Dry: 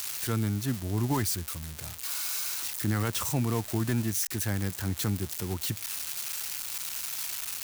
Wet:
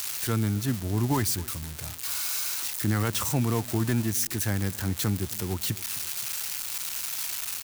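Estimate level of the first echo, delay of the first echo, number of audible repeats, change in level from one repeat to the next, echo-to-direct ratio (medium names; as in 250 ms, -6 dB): -21.0 dB, 262 ms, 2, -7.0 dB, -20.0 dB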